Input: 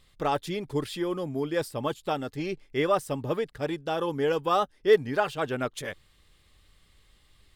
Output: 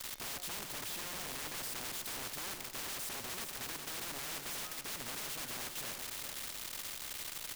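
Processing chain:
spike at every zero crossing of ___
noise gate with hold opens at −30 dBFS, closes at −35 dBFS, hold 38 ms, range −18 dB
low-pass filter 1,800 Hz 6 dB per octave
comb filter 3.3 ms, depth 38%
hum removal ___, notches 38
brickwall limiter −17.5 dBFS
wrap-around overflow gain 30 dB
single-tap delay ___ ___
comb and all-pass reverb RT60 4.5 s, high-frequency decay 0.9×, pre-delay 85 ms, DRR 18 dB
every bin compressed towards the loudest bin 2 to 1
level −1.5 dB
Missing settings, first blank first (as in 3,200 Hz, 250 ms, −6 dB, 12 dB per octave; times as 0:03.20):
−17 dBFS, 180.3 Hz, 411 ms, −9.5 dB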